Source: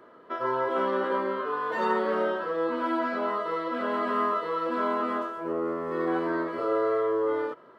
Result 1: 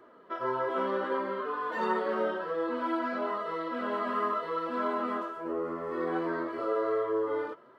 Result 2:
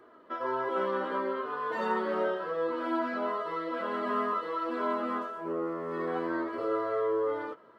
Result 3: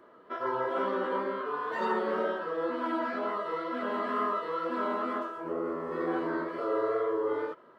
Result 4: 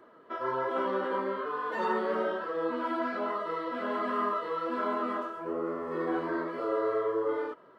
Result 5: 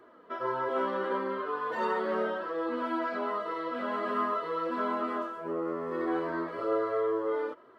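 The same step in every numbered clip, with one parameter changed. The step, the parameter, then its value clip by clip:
flange, rate: 0.61 Hz, 0.21 Hz, 2.1 Hz, 1.2 Hz, 0.39 Hz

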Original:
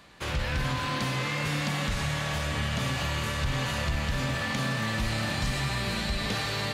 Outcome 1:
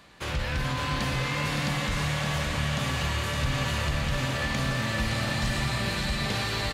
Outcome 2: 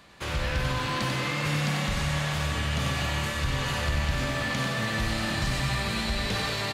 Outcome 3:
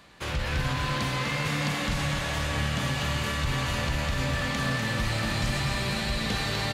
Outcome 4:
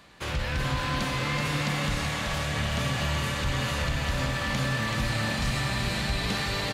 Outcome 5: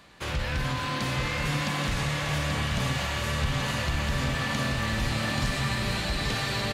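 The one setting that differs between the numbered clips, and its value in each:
feedback delay, time: 566 ms, 94 ms, 248 ms, 380 ms, 832 ms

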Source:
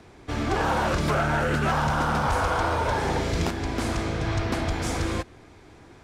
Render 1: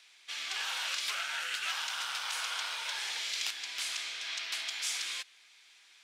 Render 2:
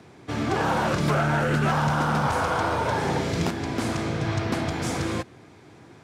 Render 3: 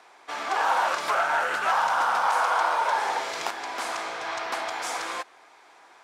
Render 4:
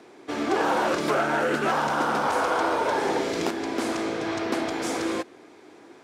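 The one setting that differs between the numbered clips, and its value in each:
resonant high-pass, frequency: 3 kHz, 130 Hz, 860 Hz, 320 Hz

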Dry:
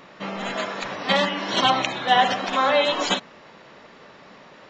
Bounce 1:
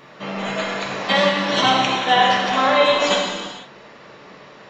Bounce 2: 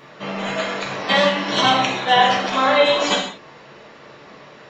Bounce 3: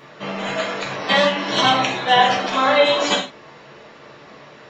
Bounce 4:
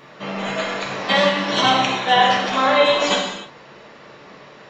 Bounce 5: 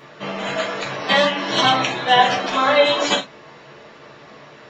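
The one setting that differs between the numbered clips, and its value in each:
gated-style reverb, gate: 520 ms, 210 ms, 140 ms, 330 ms, 90 ms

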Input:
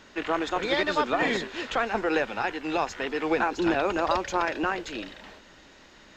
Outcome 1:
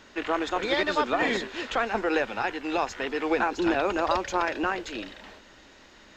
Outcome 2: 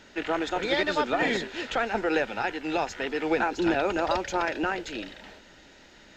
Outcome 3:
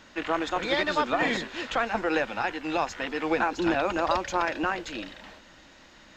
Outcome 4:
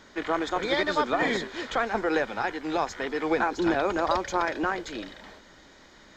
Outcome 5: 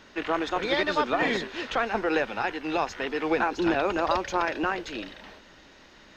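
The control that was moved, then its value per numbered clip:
band-stop, frequency: 160 Hz, 1.1 kHz, 410 Hz, 2.7 kHz, 7.3 kHz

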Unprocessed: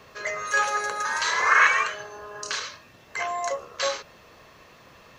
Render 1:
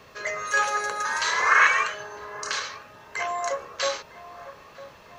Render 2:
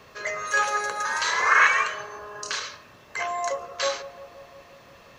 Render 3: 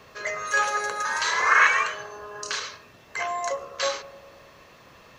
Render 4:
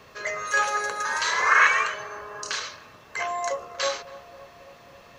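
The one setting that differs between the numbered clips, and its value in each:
band-passed feedback delay, time: 954 ms, 174 ms, 99 ms, 273 ms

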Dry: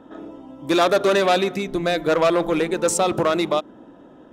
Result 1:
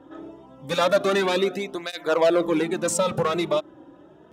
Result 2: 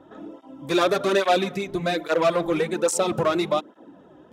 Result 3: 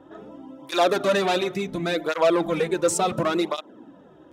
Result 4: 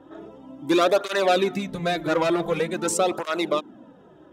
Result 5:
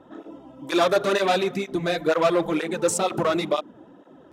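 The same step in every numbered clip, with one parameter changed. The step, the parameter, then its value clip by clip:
cancelling through-zero flanger, nulls at: 0.26 Hz, 1.2 Hz, 0.7 Hz, 0.46 Hz, 2.1 Hz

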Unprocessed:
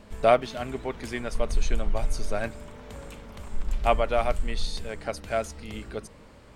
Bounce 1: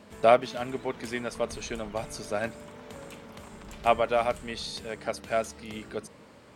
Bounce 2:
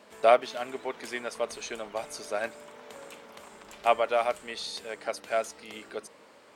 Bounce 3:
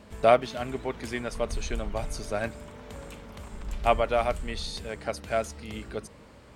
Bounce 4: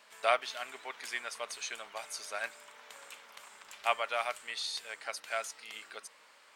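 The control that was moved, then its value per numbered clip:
high-pass, cutoff frequency: 130 Hz, 390 Hz, 46 Hz, 1.2 kHz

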